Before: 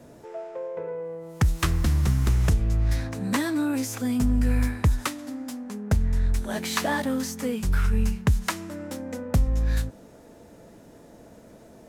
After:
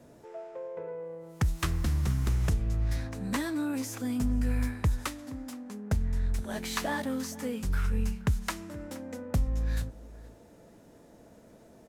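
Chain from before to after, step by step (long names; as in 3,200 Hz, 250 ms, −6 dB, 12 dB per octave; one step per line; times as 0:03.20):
slap from a distant wall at 81 metres, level −19 dB
level −6 dB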